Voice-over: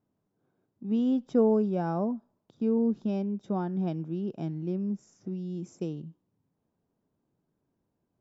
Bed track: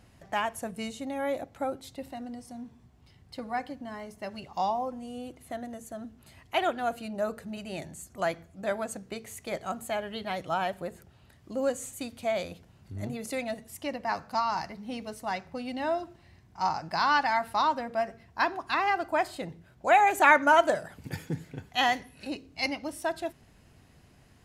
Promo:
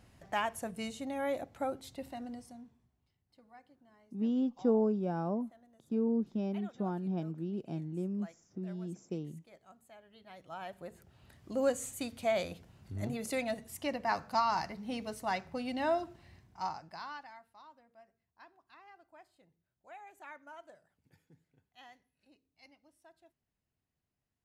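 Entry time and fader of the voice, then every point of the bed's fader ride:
3.30 s, -5.0 dB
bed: 2.35 s -3.5 dB
3.21 s -24.5 dB
10.04 s -24.5 dB
11.30 s -1.5 dB
16.36 s -1.5 dB
17.52 s -30.5 dB

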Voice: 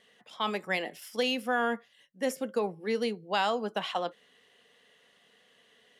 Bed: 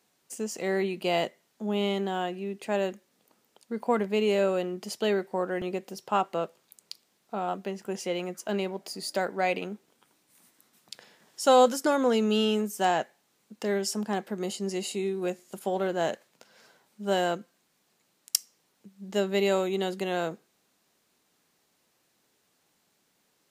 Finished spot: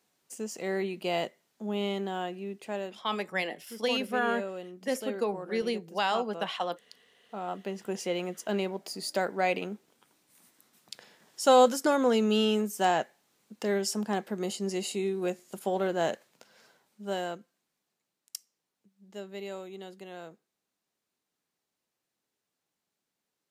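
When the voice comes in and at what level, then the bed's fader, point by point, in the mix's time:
2.65 s, -0.5 dB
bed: 2.52 s -3.5 dB
3.06 s -11.5 dB
6.96 s -11.5 dB
7.79 s -0.5 dB
16.36 s -0.5 dB
18.15 s -14.5 dB

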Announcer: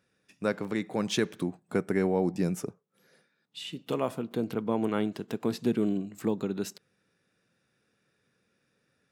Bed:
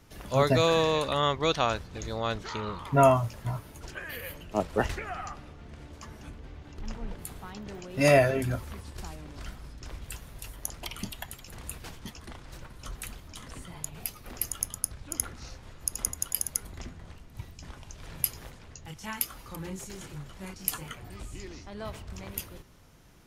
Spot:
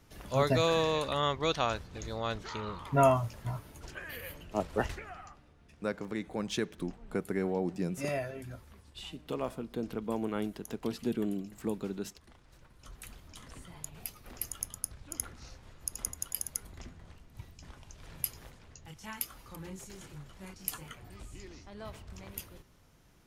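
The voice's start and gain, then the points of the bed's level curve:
5.40 s, -5.5 dB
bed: 4.79 s -4 dB
5.43 s -14.5 dB
12.56 s -14.5 dB
13.24 s -6 dB

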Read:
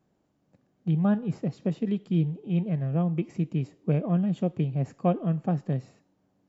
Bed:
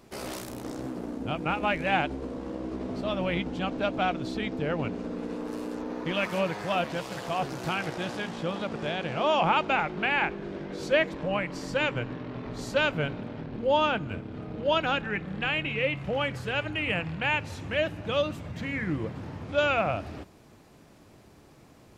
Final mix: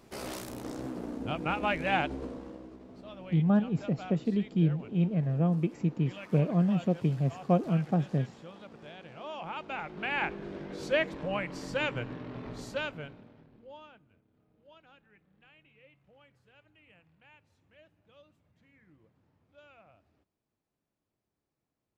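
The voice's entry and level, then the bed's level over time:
2.45 s, -1.0 dB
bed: 2.24 s -2.5 dB
2.81 s -16.5 dB
9.44 s -16.5 dB
10.25 s -4 dB
12.50 s -4 dB
14.13 s -32.5 dB

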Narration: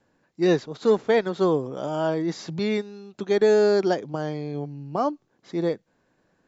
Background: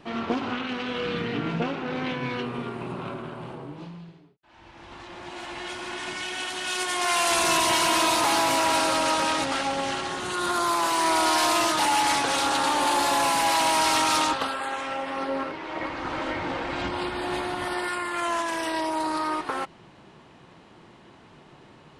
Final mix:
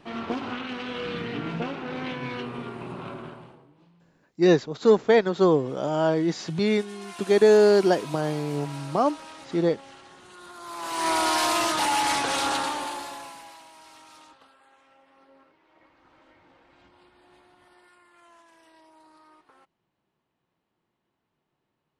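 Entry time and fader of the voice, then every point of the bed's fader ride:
4.00 s, +2.0 dB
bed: 3.28 s -3 dB
3.70 s -19 dB
10.57 s -19 dB
11.08 s -1.5 dB
12.53 s -1.5 dB
13.69 s -28.5 dB

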